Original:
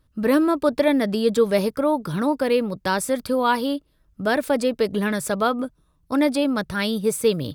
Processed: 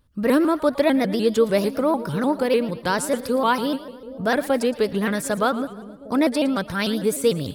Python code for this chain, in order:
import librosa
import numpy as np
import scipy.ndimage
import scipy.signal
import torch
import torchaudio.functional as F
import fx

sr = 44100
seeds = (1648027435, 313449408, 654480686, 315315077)

y = fx.echo_split(x, sr, split_hz=600.0, low_ms=757, high_ms=113, feedback_pct=52, wet_db=-15.5)
y = fx.vibrato_shape(y, sr, shape='saw_up', rate_hz=6.7, depth_cents=160.0)